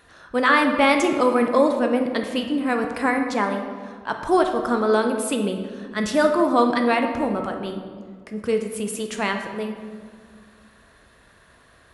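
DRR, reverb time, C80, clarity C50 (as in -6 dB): 4.0 dB, 1.9 s, 8.0 dB, 6.0 dB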